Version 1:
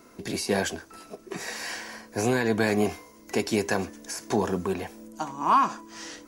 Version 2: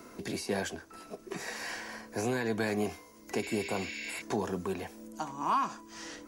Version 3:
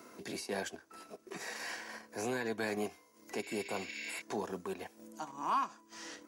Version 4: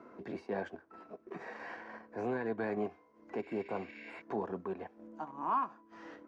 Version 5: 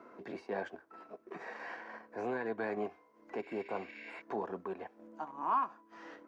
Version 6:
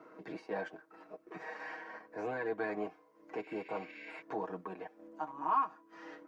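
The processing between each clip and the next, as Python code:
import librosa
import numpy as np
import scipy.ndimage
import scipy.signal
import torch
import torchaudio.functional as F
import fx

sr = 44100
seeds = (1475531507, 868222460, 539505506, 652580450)

y1 = fx.spec_repair(x, sr, seeds[0], start_s=3.45, length_s=0.74, low_hz=1500.0, high_hz=7000.0, source='before')
y1 = fx.band_squash(y1, sr, depth_pct=40)
y1 = F.gain(torch.from_numpy(y1), -7.0).numpy()
y2 = fx.highpass(y1, sr, hz=260.0, slope=6)
y2 = fx.transient(y2, sr, attack_db=-4, sustain_db=-8)
y2 = F.gain(torch.from_numpy(y2), -2.0).numpy()
y3 = scipy.signal.sosfilt(scipy.signal.butter(2, 1400.0, 'lowpass', fs=sr, output='sos'), y2)
y3 = F.gain(torch.from_numpy(y3), 1.5).numpy()
y4 = fx.low_shelf(y3, sr, hz=240.0, db=-10.5)
y4 = F.gain(torch.from_numpy(y4), 1.5).numpy()
y5 = y4 + 0.77 * np.pad(y4, (int(6.4 * sr / 1000.0), 0))[:len(y4)]
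y5 = F.gain(torch.from_numpy(y5), -2.0).numpy()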